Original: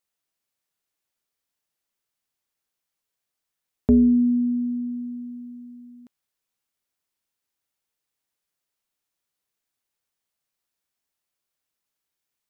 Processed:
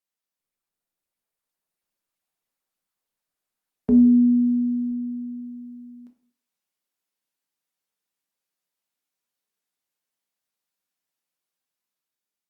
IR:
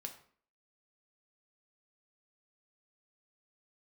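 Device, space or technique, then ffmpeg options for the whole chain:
far-field microphone of a smart speaker: -filter_complex "[0:a]asplit=3[link_01][link_02][link_03];[link_01]afade=type=out:start_time=5.38:duration=0.02[link_04];[link_02]highpass=frequency=60:poles=1,afade=type=in:start_time=5.38:duration=0.02,afade=type=out:start_time=5.94:duration=0.02[link_05];[link_03]afade=type=in:start_time=5.94:duration=0.02[link_06];[link_04][link_05][link_06]amix=inputs=3:normalize=0[link_07];[1:a]atrim=start_sample=2205[link_08];[link_07][link_08]afir=irnorm=-1:irlink=0,highpass=120,dynaudnorm=framelen=320:gausssize=7:maxgain=4dB,volume=-2.5dB" -ar 48000 -c:a libopus -b:a 48k

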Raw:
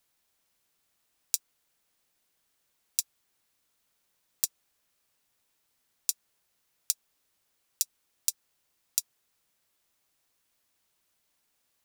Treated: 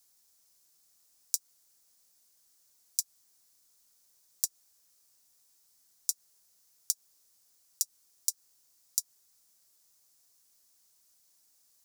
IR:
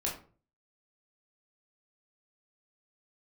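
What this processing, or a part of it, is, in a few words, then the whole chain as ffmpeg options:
over-bright horn tweeter: -af "highshelf=frequency=4000:width_type=q:width=1.5:gain=10,alimiter=limit=-1.5dB:level=0:latency=1:release=121,volume=-2dB"

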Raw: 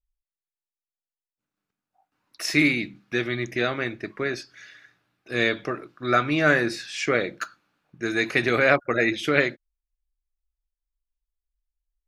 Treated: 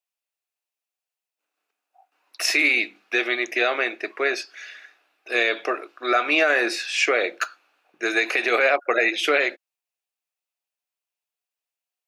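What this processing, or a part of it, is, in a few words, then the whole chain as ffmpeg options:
laptop speaker: -af "highpass=frequency=390:width=0.5412,highpass=frequency=390:width=1.3066,equalizer=frequency=720:width_type=o:width=0.29:gain=6,equalizer=frequency=2600:width_type=o:width=0.29:gain=7.5,alimiter=limit=-14.5dB:level=0:latency=1:release=92,volume=5.5dB"

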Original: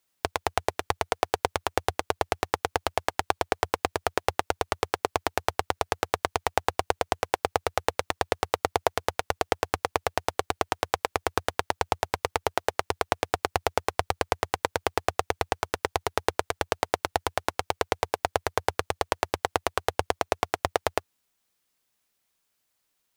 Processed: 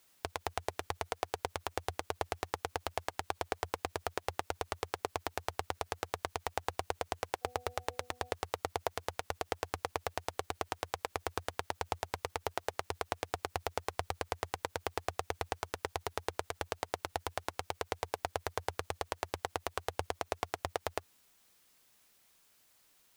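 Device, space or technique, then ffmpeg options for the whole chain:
de-esser from a sidechain: -filter_complex "[0:a]asplit=2[link_01][link_02];[link_02]highpass=4700,apad=whole_len=1021716[link_03];[link_01][link_03]sidechaincompress=threshold=-51dB:ratio=4:attack=3.4:release=37,asplit=3[link_04][link_05][link_06];[link_04]afade=type=out:start_time=7.41:duration=0.02[link_07];[link_05]bandreject=frequency=246.4:width_type=h:width=4,bandreject=frequency=492.8:width_type=h:width=4,bandreject=frequency=739.2:width_type=h:width=4,afade=type=in:start_time=7.41:duration=0.02,afade=type=out:start_time=8.3:duration=0.02[link_08];[link_06]afade=type=in:start_time=8.3:duration=0.02[link_09];[link_07][link_08][link_09]amix=inputs=3:normalize=0,volume=8.5dB"

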